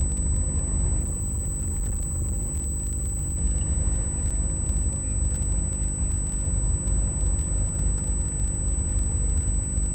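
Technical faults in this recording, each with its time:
crackle 16/s -30 dBFS
hum 50 Hz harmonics 7 -30 dBFS
tone 8000 Hz -30 dBFS
0.99–3.36 clipped -23.5 dBFS
4.3–4.31 gap 6 ms

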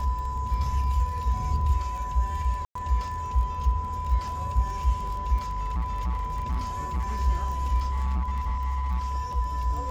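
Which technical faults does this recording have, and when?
crackle 26/s -34 dBFS
tone 1000 Hz -31 dBFS
2.65–2.75 gap 0.104 s
5.42–7.17 clipped -24 dBFS
7.91–9.15 clipped -23.5 dBFS

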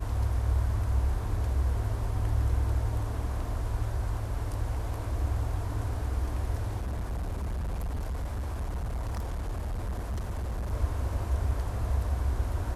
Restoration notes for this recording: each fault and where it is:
6.81–10.73 clipped -29 dBFS

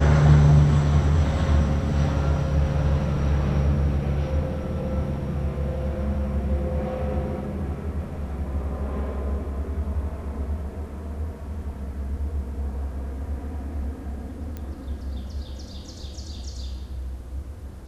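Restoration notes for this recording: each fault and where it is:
14.57 pop -21 dBFS

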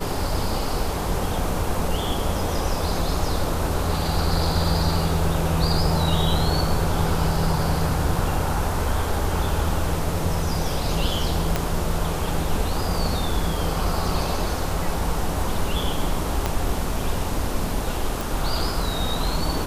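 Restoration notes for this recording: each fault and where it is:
11.56 pop -7 dBFS
14.49 gap 2 ms
16.46 pop -8 dBFS
18.21 pop

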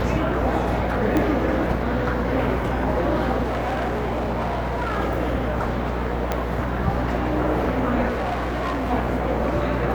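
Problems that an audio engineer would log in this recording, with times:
buzz 60 Hz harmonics 37 -27 dBFS
1.17 pop -10 dBFS
3.43–4.99 clipped -21 dBFS
6.32 pop -9 dBFS
8.08–8.92 clipped -21.5 dBFS

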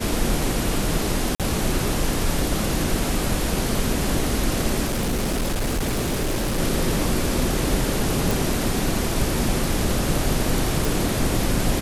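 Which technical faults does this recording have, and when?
1.35–1.4 gap 47 ms
4.85–6.6 clipped -19.5 dBFS
8.31 pop
10.85 pop

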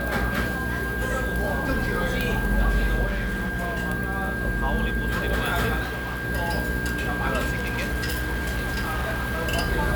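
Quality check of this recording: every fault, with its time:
hum 60 Hz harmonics 8 -30 dBFS
tone 1600 Hz -29 dBFS
3.06–3.78 clipped -23 dBFS
5.82–6.25 clipped -26.5 dBFS
7.54–9.48 clipped -23 dBFS

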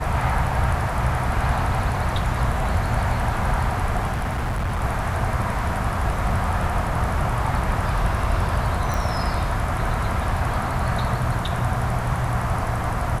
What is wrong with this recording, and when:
4.11–4.83 clipped -21 dBFS
8.94 pop

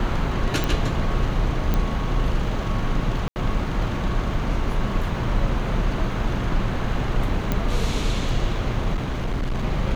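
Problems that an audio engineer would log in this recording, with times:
0.64 pop
1.74 pop -10 dBFS
3.28–3.36 gap 79 ms
7.52 pop -9 dBFS
8.94–9.65 clipped -20.5 dBFS

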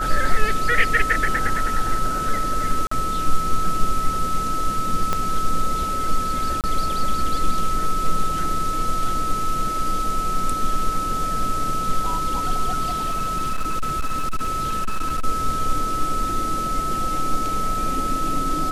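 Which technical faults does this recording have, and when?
tone 1300 Hz -23 dBFS
2.87–2.91 gap 44 ms
5.13 pop -8 dBFS
6.61–6.64 gap 28 ms
12.88–15.25 clipped -18 dBFS

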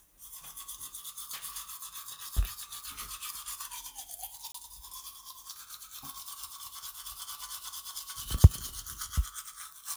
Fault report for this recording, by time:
4.52–4.54 gap 24 ms

